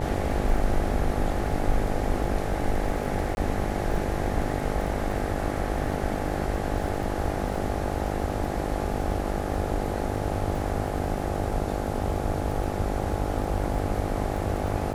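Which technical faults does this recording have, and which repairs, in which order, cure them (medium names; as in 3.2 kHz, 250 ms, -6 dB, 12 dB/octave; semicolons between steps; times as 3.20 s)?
buzz 50 Hz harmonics 17 -31 dBFS
crackle 32 per s -34 dBFS
3.35–3.37 s: dropout 21 ms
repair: de-click; de-hum 50 Hz, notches 17; interpolate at 3.35 s, 21 ms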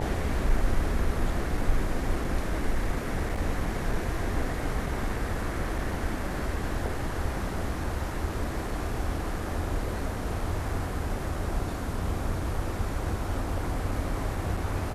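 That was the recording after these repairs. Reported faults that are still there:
nothing left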